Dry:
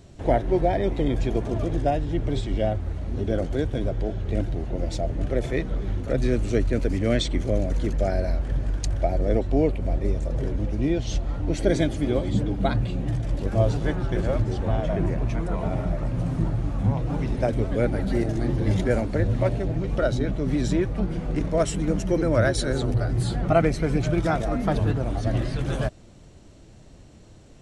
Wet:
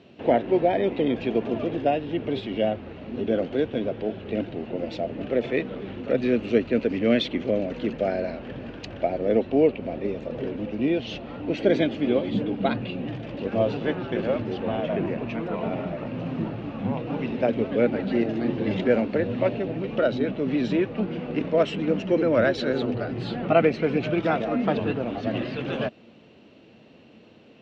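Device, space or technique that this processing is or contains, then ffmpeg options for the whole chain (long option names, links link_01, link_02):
kitchen radio: -af "highpass=210,equalizer=frequency=230:width_type=q:width=4:gain=7,equalizer=frequency=470:width_type=q:width=4:gain=5,equalizer=frequency=2700:width_type=q:width=4:gain=10,lowpass=frequency=4100:width=0.5412,lowpass=frequency=4100:width=1.3066"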